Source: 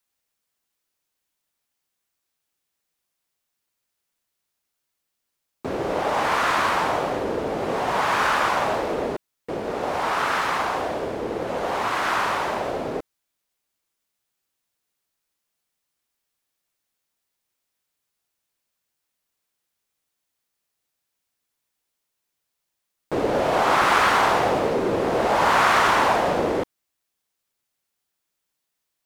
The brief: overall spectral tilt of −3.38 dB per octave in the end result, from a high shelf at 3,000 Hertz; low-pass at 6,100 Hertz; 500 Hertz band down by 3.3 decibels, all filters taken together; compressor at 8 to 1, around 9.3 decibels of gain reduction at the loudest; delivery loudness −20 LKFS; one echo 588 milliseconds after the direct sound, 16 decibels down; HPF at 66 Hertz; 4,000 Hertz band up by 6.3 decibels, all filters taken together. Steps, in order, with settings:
high-pass filter 66 Hz
low-pass filter 6,100 Hz
parametric band 500 Hz −4.5 dB
high-shelf EQ 3,000 Hz +6.5 dB
parametric band 4,000 Hz +4 dB
downward compressor 8 to 1, threshold −23 dBFS
single-tap delay 588 ms −16 dB
level +7 dB

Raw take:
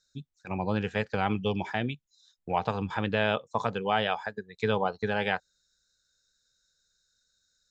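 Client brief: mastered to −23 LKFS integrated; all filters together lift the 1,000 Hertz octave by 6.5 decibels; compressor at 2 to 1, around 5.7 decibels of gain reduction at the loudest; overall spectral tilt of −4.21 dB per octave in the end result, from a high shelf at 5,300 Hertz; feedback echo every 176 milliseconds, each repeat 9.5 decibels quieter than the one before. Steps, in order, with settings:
parametric band 1,000 Hz +9 dB
high-shelf EQ 5,300 Hz −9 dB
downward compressor 2 to 1, threshold −27 dBFS
repeating echo 176 ms, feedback 33%, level −9.5 dB
level +7.5 dB

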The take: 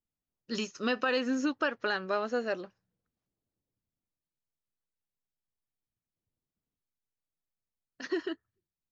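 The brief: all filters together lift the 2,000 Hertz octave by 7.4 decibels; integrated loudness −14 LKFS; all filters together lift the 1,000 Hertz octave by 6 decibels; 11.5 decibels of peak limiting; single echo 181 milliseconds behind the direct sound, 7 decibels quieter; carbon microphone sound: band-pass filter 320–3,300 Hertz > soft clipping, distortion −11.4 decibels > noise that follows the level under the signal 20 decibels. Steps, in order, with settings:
parametric band 1,000 Hz +5 dB
parametric band 2,000 Hz +8.5 dB
brickwall limiter −23 dBFS
band-pass filter 320–3,300 Hz
single-tap delay 181 ms −7 dB
soft clipping −31.5 dBFS
noise that follows the level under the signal 20 dB
level +24 dB

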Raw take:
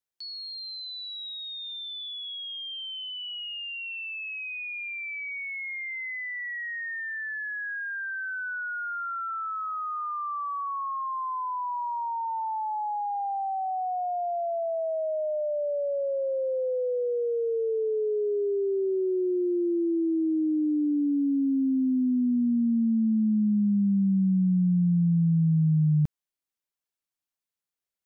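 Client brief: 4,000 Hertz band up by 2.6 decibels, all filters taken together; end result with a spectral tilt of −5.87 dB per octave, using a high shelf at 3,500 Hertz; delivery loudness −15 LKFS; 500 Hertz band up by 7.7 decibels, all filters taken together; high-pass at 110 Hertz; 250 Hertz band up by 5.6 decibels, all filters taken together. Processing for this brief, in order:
high-pass filter 110 Hz
parametric band 250 Hz +5.5 dB
parametric band 500 Hz +8 dB
high-shelf EQ 3,500 Hz −7 dB
parametric band 4,000 Hz +7.5 dB
level +7.5 dB

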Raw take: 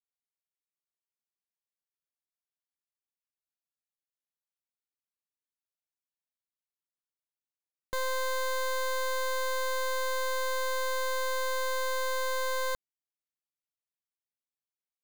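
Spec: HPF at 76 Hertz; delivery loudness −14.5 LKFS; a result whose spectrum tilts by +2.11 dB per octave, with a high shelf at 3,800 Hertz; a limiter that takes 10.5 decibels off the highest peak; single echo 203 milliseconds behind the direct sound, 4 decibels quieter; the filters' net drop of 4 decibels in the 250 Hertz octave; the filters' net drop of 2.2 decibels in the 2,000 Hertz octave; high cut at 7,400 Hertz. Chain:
high-pass filter 76 Hz
low-pass filter 7,400 Hz
parametric band 250 Hz −5.5 dB
parametric band 2,000 Hz −4 dB
high-shelf EQ 3,800 Hz +5 dB
brickwall limiter −33.5 dBFS
single-tap delay 203 ms −4 dB
level +27.5 dB

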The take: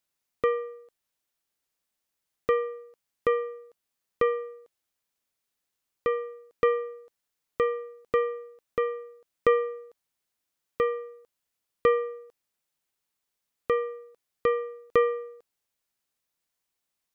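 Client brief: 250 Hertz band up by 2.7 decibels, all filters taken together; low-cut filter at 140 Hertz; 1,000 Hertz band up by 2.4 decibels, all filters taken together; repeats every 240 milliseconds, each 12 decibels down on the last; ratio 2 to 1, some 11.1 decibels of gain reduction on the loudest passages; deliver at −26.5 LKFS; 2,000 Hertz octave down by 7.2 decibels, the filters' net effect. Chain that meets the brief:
high-pass filter 140 Hz
parametric band 250 Hz +4 dB
parametric band 1,000 Hz +6.5 dB
parametric band 2,000 Hz −9 dB
downward compressor 2 to 1, threshold −36 dBFS
repeating echo 240 ms, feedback 25%, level −12 dB
level +10.5 dB

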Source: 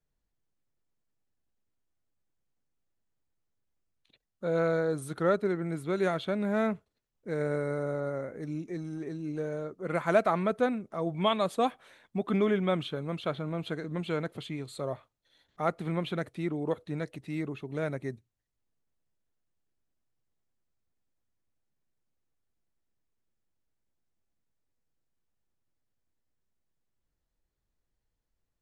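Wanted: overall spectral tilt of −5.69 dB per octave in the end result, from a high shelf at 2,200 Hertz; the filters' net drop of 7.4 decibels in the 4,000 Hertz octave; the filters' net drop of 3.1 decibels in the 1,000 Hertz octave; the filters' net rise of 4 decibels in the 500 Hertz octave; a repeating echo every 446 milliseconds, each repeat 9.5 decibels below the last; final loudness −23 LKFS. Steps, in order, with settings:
parametric band 500 Hz +7 dB
parametric band 1,000 Hz −7 dB
high-shelf EQ 2,200 Hz −3.5 dB
parametric band 4,000 Hz −6 dB
repeating echo 446 ms, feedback 33%, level −9.5 dB
level +6 dB

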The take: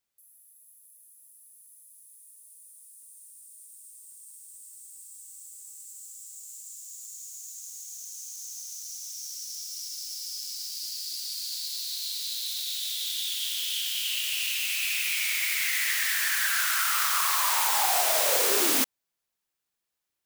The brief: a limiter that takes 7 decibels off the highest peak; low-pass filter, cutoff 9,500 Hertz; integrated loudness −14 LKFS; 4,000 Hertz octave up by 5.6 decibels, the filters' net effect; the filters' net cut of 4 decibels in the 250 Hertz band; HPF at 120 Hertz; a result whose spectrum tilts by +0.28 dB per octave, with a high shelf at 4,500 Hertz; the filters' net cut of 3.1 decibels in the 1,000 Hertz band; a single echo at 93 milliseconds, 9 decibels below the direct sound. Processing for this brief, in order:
high-pass filter 120 Hz
low-pass filter 9,500 Hz
parametric band 250 Hz −5 dB
parametric band 1,000 Hz −4.5 dB
parametric band 4,000 Hz +4.5 dB
high-shelf EQ 4,500 Hz +5.5 dB
brickwall limiter −17 dBFS
single-tap delay 93 ms −9 dB
level +11.5 dB

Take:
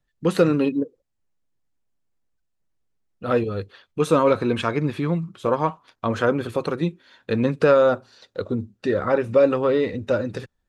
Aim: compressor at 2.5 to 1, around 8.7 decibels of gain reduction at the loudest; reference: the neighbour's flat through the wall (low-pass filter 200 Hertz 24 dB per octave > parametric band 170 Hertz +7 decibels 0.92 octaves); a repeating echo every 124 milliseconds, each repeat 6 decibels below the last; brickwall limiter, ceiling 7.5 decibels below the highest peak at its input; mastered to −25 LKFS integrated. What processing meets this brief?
downward compressor 2.5 to 1, threshold −25 dBFS
brickwall limiter −19 dBFS
low-pass filter 200 Hz 24 dB per octave
parametric band 170 Hz +7 dB 0.92 octaves
repeating echo 124 ms, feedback 50%, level −6 dB
level +7.5 dB

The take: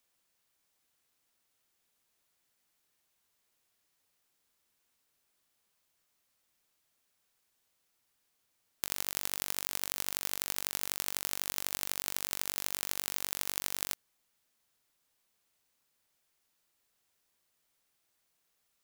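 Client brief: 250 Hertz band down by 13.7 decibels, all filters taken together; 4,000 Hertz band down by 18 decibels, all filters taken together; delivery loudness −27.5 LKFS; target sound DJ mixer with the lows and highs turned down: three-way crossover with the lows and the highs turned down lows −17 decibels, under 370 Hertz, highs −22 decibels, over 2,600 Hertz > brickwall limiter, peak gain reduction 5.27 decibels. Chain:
three-way crossover with the lows and the highs turned down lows −17 dB, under 370 Hz, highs −22 dB, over 2,600 Hz
parametric band 250 Hz −7 dB
parametric band 4,000 Hz −9 dB
level +23.5 dB
brickwall limiter −9 dBFS

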